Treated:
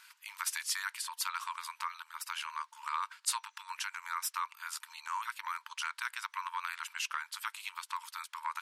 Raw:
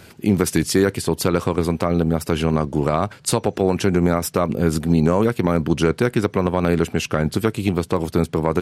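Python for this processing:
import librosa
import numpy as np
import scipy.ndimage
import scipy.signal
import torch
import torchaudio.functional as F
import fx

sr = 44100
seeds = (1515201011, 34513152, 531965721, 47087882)

y = fx.brickwall_highpass(x, sr, low_hz=880.0)
y = y * librosa.db_to_amplitude(-9.0)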